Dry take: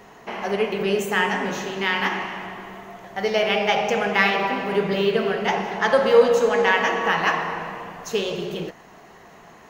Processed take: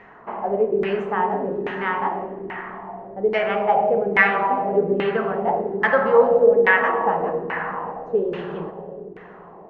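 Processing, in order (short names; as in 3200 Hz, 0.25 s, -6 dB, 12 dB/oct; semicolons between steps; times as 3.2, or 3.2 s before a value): digital reverb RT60 4.8 s, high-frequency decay 0.5×, pre-delay 45 ms, DRR 8.5 dB; LFO low-pass saw down 1.2 Hz 360–2100 Hz; gain -2.5 dB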